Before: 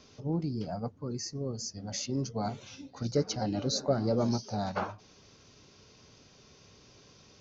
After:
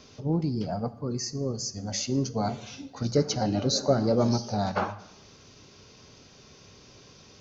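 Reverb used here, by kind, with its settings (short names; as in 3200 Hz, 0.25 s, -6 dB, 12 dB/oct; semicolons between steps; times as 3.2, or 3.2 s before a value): plate-style reverb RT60 0.89 s, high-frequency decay 0.9×, DRR 13.5 dB; gain +5 dB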